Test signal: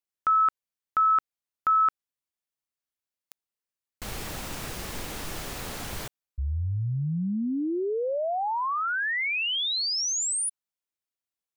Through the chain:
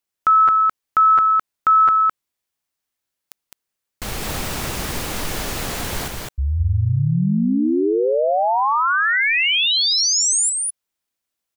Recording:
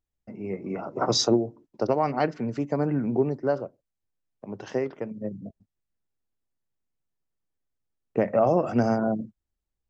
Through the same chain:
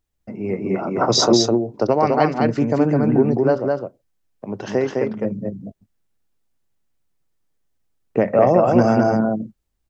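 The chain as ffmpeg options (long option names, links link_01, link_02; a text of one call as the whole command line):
ffmpeg -i in.wav -filter_complex "[0:a]asplit=2[link_01][link_02];[link_02]alimiter=limit=-17.5dB:level=0:latency=1:release=159,volume=0.5dB[link_03];[link_01][link_03]amix=inputs=2:normalize=0,aecho=1:1:209:0.708,volume=2dB" out.wav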